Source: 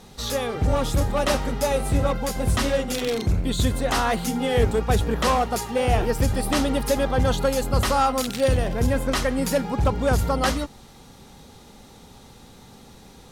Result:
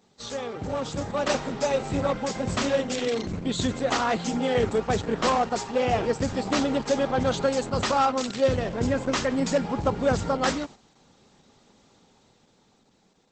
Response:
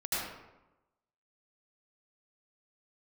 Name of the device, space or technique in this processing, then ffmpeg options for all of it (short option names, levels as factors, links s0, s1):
video call: -filter_complex "[0:a]asplit=3[s0][s1][s2];[s0]afade=t=out:st=8.42:d=0.02[s3];[s1]lowshelf=f=120:g=3.5,afade=t=in:st=8.42:d=0.02,afade=t=out:st=10.28:d=0.02[s4];[s2]afade=t=in:st=10.28:d=0.02[s5];[s3][s4][s5]amix=inputs=3:normalize=0,highpass=140,dynaudnorm=f=180:g=13:m=2,agate=range=0.398:threshold=0.02:ratio=16:detection=peak,volume=0.501" -ar 48000 -c:a libopus -b:a 12k